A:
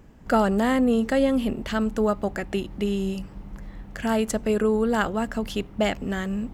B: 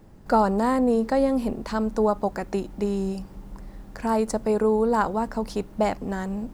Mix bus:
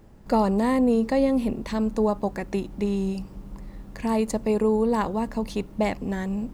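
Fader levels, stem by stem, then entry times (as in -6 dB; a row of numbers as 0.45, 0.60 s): -8.0, -2.0 dB; 0.00, 0.00 s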